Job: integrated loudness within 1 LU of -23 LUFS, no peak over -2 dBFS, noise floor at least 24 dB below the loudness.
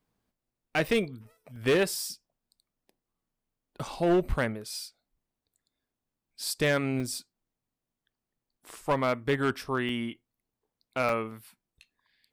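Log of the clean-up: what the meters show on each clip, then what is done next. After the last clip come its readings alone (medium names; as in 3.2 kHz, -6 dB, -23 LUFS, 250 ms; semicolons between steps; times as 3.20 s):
clipped samples 0.7%; clipping level -19.0 dBFS; dropouts 6; longest dropout 3.4 ms; loudness -29.5 LUFS; peak level -19.0 dBFS; loudness target -23.0 LUFS
-> clip repair -19 dBFS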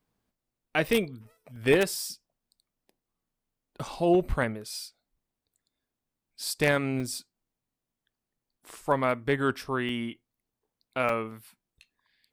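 clipped samples 0.0%; dropouts 6; longest dropout 3.4 ms
-> interpolate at 0.88/1.56/3.85/7.00/9.89/11.09 s, 3.4 ms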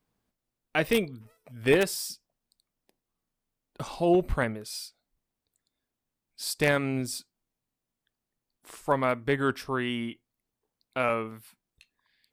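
dropouts 0; loudness -28.5 LUFS; peak level -10.0 dBFS; loudness target -23.0 LUFS
-> trim +5.5 dB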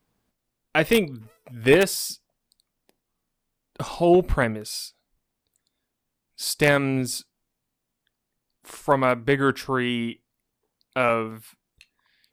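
loudness -23.0 LUFS; peak level -4.5 dBFS; noise floor -81 dBFS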